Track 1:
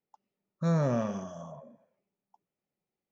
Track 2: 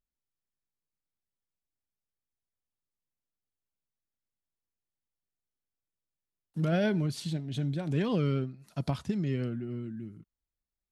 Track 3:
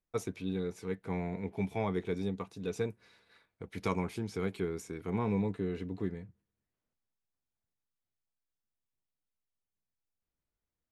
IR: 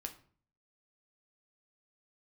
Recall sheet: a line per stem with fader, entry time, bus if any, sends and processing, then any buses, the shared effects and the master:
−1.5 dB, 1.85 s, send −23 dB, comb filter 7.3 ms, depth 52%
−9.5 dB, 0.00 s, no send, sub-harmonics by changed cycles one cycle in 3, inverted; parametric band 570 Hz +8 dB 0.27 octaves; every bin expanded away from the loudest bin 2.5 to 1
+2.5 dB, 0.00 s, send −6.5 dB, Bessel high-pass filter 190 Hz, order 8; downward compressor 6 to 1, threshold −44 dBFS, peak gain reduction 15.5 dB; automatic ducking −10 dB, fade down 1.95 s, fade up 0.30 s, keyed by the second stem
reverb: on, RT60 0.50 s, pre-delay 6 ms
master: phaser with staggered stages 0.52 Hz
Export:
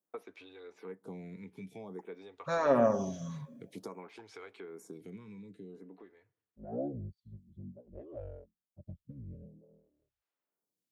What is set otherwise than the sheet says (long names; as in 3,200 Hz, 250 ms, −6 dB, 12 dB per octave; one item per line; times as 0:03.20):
stem 1 −1.5 dB → +5.0 dB
stem 3: send −6.5 dB → −12.5 dB